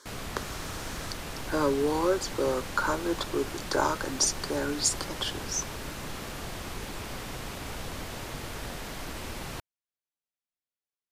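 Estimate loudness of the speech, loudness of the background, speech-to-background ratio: -29.5 LUFS, -38.0 LUFS, 8.5 dB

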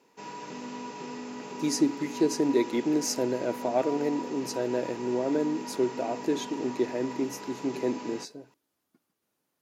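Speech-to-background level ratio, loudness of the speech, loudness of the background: 9.5 dB, -29.5 LUFS, -39.0 LUFS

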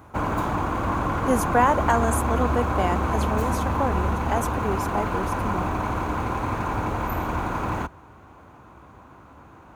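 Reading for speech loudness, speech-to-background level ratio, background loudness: -27.0 LUFS, -1.0 dB, -26.0 LUFS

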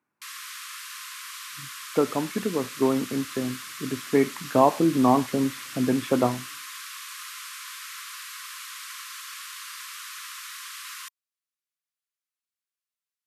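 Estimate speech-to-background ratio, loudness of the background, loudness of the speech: 12.0 dB, -37.0 LUFS, -25.0 LUFS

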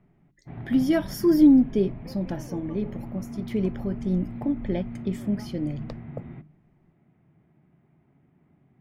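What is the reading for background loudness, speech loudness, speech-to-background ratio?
-38.5 LUFS, -25.0 LUFS, 13.5 dB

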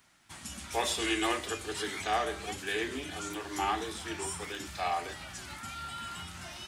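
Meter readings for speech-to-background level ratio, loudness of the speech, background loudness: 6.5 dB, -34.5 LUFS, -41.0 LUFS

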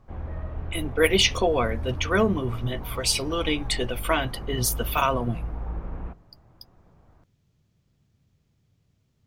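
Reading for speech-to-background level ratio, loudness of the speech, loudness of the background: 11.0 dB, -25.0 LUFS, -36.0 LUFS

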